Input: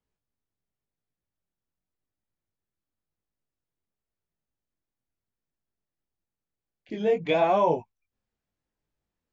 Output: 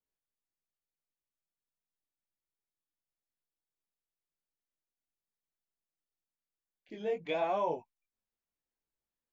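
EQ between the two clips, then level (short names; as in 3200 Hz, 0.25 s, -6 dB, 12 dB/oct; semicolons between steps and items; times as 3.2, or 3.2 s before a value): bell 93 Hz -9 dB 2.3 oct; -9.0 dB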